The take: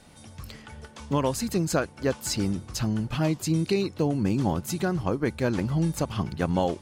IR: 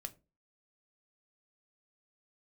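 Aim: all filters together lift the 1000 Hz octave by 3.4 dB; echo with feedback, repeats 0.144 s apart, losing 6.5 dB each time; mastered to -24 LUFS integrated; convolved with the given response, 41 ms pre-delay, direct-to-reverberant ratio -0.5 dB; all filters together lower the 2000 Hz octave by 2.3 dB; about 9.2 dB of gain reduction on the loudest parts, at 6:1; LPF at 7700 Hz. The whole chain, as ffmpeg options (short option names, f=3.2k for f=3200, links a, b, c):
-filter_complex "[0:a]lowpass=7.7k,equalizer=f=1k:t=o:g=5.5,equalizer=f=2k:t=o:g=-6,acompressor=threshold=-29dB:ratio=6,aecho=1:1:144|288|432|576|720|864:0.473|0.222|0.105|0.0491|0.0231|0.0109,asplit=2[a][b];[1:a]atrim=start_sample=2205,adelay=41[c];[b][c]afir=irnorm=-1:irlink=0,volume=4dB[d];[a][d]amix=inputs=2:normalize=0,volume=6dB"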